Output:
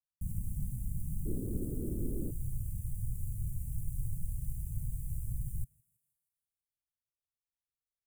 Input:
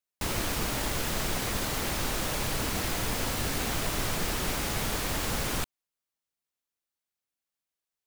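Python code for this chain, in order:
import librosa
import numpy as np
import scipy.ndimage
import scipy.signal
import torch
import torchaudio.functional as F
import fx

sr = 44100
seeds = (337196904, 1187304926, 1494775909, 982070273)

y = scipy.ndimage.median_filter(x, 9, mode='constant')
y = fx.ellip_bandstop(y, sr, low_hz=fx.steps((0.0, 160.0), (1.25, 370.0), (2.3, 130.0)), high_hz=9400.0, order=3, stop_db=40)
y = fx.echo_thinned(y, sr, ms=162, feedback_pct=59, hz=300.0, wet_db=-22.5)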